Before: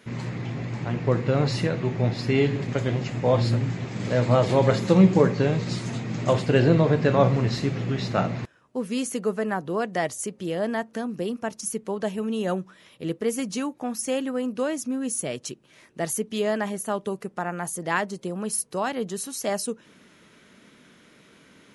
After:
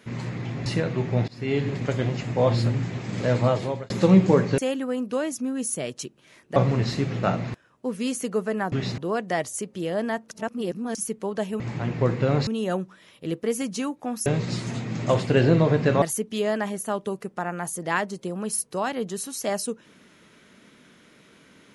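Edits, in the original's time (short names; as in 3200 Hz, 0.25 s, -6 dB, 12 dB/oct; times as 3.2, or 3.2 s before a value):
0.66–1.53 move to 12.25
2.15–2.56 fade in, from -22.5 dB
4.25–4.77 fade out
5.45–7.21 swap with 14.04–16.02
7.88–8.14 move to 9.63
10.96–11.6 reverse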